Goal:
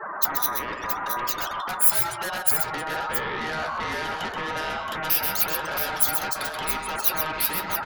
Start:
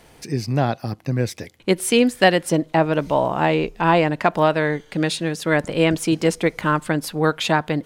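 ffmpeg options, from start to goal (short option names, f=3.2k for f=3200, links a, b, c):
-filter_complex "[0:a]aeval=exprs='val(0)+0.5*0.0398*sgn(val(0))':c=same,acrossover=split=9300[a][b];[b]acompressor=threshold=-51dB:ratio=4:attack=1:release=60[c];[a][c]amix=inputs=2:normalize=0,afftfilt=real='re*gte(hypot(re,im),0.0631)':imag='im*gte(hypot(re,im),0.0631)':win_size=1024:overlap=0.75,highshelf=f=4.8k:g=9.5,acompressor=threshold=-24dB:ratio=16,alimiter=limit=-21.5dB:level=0:latency=1:release=20,aeval=exprs='0.126*sin(PI/2*3.55*val(0)/0.126)':c=same,aeval=exprs='val(0)*sin(2*PI*1100*n/s)':c=same,aexciter=amount=14.5:drive=2.7:freq=11k,flanger=delay=4.9:depth=9.2:regen=-53:speed=0.88:shape=sinusoidal,asplit=2[d][e];[e]aecho=0:1:129|672:0.501|0.447[f];[d][f]amix=inputs=2:normalize=0,volume=-2.5dB"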